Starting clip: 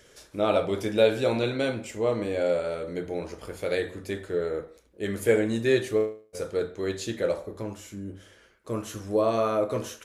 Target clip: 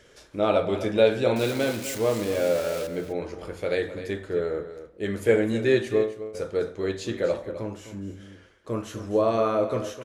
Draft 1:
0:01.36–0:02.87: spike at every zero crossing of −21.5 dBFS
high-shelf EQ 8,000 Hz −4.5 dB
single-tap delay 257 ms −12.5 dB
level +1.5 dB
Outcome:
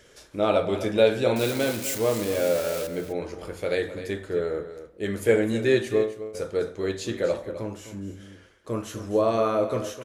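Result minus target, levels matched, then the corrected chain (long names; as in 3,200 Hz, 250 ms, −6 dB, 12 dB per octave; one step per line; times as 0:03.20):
8,000 Hz band +3.5 dB
0:01.36–0:02.87: spike at every zero crossing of −21.5 dBFS
high-shelf EQ 8,000 Hz −12.5 dB
single-tap delay 257 ms −12.5 dB
level +1.5 dB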